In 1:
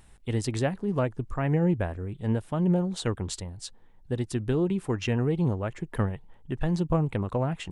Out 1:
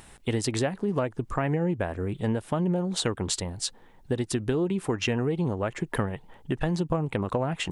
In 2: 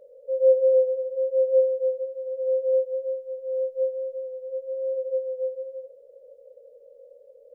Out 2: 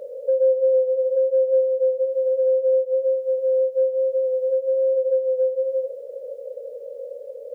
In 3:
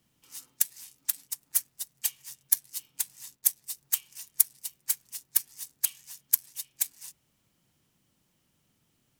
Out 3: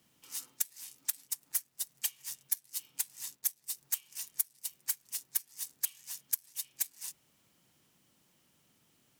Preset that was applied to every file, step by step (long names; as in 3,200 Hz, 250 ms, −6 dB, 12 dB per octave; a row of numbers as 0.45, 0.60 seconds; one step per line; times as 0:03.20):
low-shelf EQ 120 Hz −12 dB
downward compressor 4 to 1, threshold −35 dBFS
normalise the peak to −12 dBFS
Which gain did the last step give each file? +10.5, +16.0, +3.5 decibels